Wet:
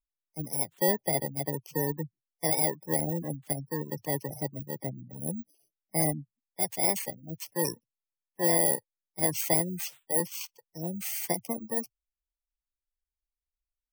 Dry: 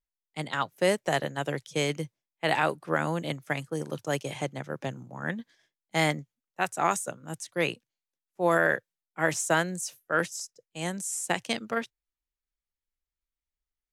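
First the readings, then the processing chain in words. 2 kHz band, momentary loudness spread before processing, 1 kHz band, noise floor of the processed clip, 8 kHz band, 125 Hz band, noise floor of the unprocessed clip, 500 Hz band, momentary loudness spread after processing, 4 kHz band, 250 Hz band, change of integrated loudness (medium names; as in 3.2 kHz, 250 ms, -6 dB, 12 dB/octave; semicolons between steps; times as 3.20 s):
-11.0 dB, 12 LU, -6.5 dB, under -85 dBFS, +3.5 dB, -0.5 dB, under -85 dBFS, -3.5 dB, 13 LU, -4.5 dB, -1.0 dB, +0.5 dB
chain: bit-reversed sample order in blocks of 32 samples; spectral gate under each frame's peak -15 dB strong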